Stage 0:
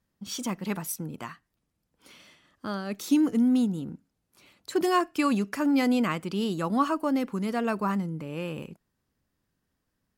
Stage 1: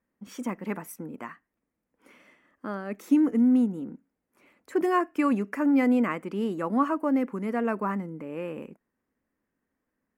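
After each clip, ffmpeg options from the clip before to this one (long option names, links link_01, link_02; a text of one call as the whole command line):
ffmpeg -i in.wav -af "equalizer=frequency=125:width_type=o:width=1:gain=-5,equalizer=frequency=250:width_type=o:width=1:gain=10,equalizer=frequency=500:width_type=o:width=1:gain=8,equalizer=frequency=1000:width_type=o:width=1:gain=5,equalizer=frequency=2000:width_type=o:width=1:gain=11,equalizer=frequency=4000:width_type=o:width=1:gain=-11,volume=-9dB" out.wav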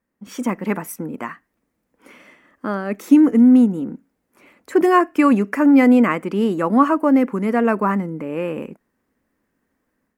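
ffmpeg -i in.wav -af "dynaudnorm=framelen=190:gausssize=3:maxgain=7.5dB,volume=2.5dB" out.wav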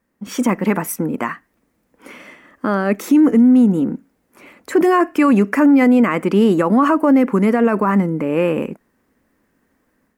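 ffmpeg -i in.wav -af "alimiter=level_in=12.5dB:limit=-1dB:release=50:level=0:latency=1,volume=-5dB" out.wav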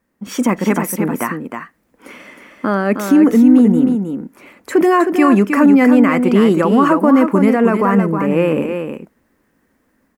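ffmpeg -i in.wav -af "aecho=1:1:314:0.473,volume=1.5dB" out.wav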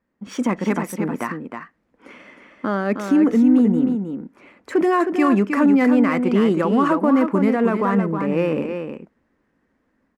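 ffmpeg -i in.wav -af "adynamicsmooth=sensitivity=3:basefreq=5000,volume=-5.5dB" out.wav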